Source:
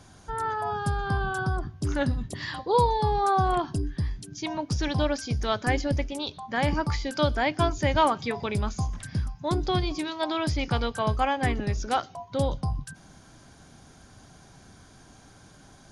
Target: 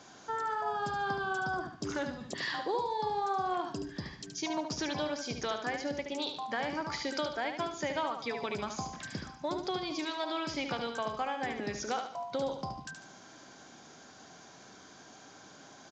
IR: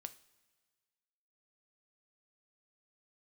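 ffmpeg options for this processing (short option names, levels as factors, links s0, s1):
-af "highpass=280,acompressor=threshold=0.0224:ratio=5,aecho=1:1:73|146|219|292:0.447|0.165|0.0612|0.0226,volume=1.12" -ar 16000 -c:a pcm_mulaw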